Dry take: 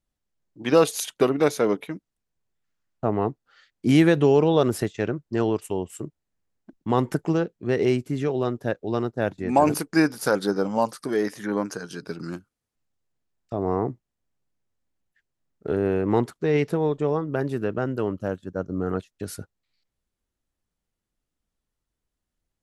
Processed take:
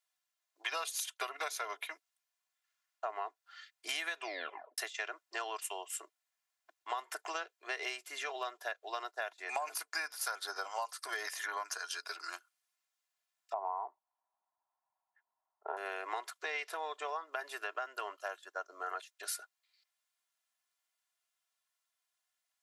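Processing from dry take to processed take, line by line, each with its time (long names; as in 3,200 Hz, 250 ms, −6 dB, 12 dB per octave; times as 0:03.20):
0:04.16: tape stop 0.62 s
0:13.53–0:15.77: low-pass with resonance 900 Hz, resonance Q 6.9
whole clip: Bessel high-pass filter 1,100 Hz, order 6; comb filter 2.9 ms, depth 58%; downward compressor 10 to 1, threshold −37 dBFS; level +2.5 dB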